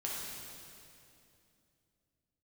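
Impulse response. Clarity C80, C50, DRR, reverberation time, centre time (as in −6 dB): 0.0 dB, −2.0 dB, −5.0 dB, 2.7 s, 138 ms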